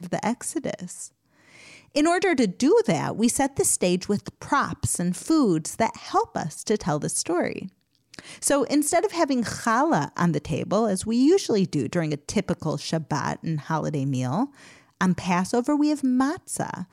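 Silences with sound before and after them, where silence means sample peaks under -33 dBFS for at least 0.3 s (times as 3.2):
1.06–1.95
7.67–8.14
14.46–15.01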